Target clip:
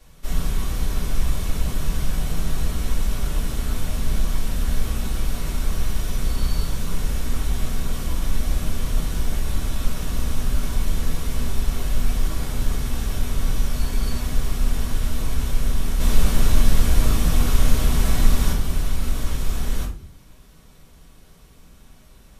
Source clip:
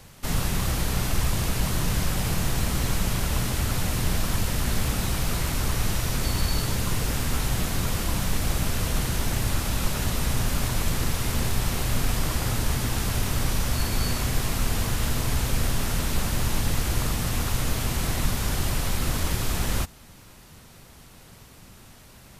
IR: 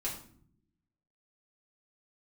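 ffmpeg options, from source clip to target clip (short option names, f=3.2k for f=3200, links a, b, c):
-filter_complex "[0:a]asplit=3[a][b][c];[a]afade=t=out:st=15.99:d=0.02[d];[b]acontrast=57,afade=t=in:st=15.99:d=0.02,afade=t=out:st=18.51:d=0.02[e];[c]afade=t=in:st=18.51:d=0.02[f];[d][e][f]amix=inputs=3:normalize=0[g];[1:a]atrim=start_sample=2205,asetrate=61740,aresample=44100[h];[g][h]afir=irnorm=-1:irlink=0,volume=-4dB"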